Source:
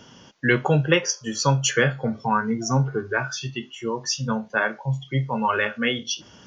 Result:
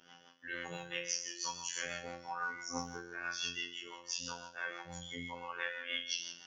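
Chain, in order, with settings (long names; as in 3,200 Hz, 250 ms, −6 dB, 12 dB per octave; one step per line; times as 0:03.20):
low-pass that shuts in the quiet parts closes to 2,100 Hz, open at −17 dBFS
spectral tilt +4.5 dB per octave
reversed playback
downward compressor 6 to 1, threshold −29 dBFS, peak gain reduction 19.5 dB
reversed playback
resonators tuned to a chord C3 major, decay 0.83 s
rotating-speaker cabinet horn 6 Hz
phases set to zero 86.6 Hz
level +17 dB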